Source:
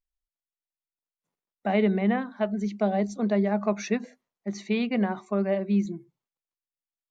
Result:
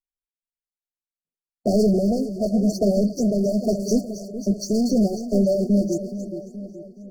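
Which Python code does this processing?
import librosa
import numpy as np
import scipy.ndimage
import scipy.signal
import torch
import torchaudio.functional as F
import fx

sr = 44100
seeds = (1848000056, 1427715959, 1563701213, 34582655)

p1 = fx.spec_delay(x, sr, highs='late', ms=111)
p2 = fx.dereverb_blind(p1, sr, rt60_s=0.53)
p3 = fx.leveller(p2, sr, passes=5)
p4 = p3 + fx.echo_split(p3, sr, split_hz=690.0, low_ms=424, high_ms=271, feedback_pct=52, wet_db=-10.5, dry=0)
p5 = fx.rotary_switch(p4, sr, hz=1.0, then_hz=6.7, switch_at_s=3.54)
y = fx.brickwall_bandstop(p5, sr, low_hz=730.0, high_hz=4300.0)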